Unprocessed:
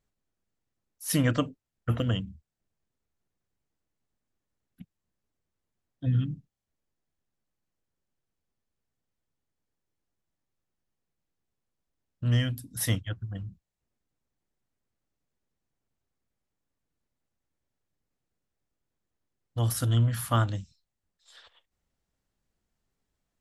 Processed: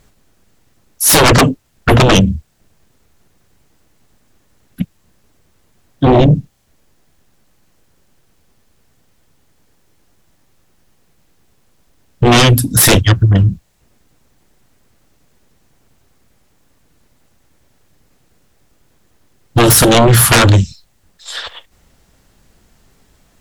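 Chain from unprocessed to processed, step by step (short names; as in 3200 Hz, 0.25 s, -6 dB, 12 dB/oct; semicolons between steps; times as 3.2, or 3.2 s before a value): sine folder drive 18 dB, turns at -11.5 dBFS; gain +7 dB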